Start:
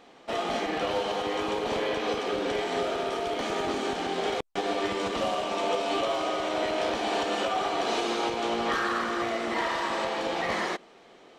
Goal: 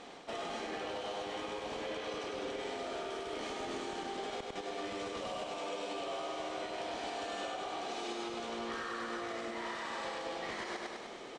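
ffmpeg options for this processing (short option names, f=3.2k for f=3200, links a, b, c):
-af "lowpass=f=9.6k:w=0.5412,lowpass=f=9.6k:w=1.3066,areverse,acompressor=threshold=-39dB:ratio=6,areverse,highshelf=f=7.4k:g=7.5,aecho=1:1:100|200|300|400|500|600|700:0.631|0.341|0.184|0.0994|0.0537|0.029|0.0156,alimiter=level_in=10dB:limit=-24dB:level=0:latency=1:release=186,volume=-10dB,volume=3.5dB"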